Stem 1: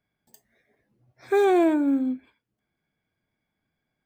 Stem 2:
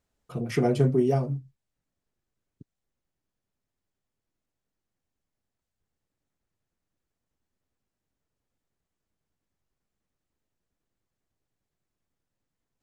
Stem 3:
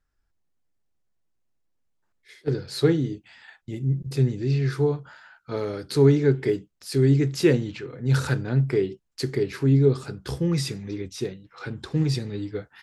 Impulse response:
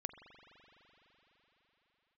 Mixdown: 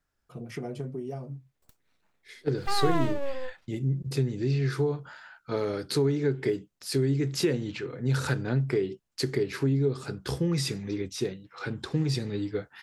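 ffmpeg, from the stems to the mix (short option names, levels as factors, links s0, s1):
-filter_complex "[0:a]aeval=exprs='abs(val(0))':c=same,adelay=1350,volume=0.562[s0];[1:a]acompressor=threshold=0.0708:ratio=6,volume=0.376[s1];[2:a]lowshelf=f=63:g=-10.5,acompressor=threshold=0.0631:ratio=4,volume=1.12[s2];[s0][s1][s2]amix=inputs=3:normalize=0"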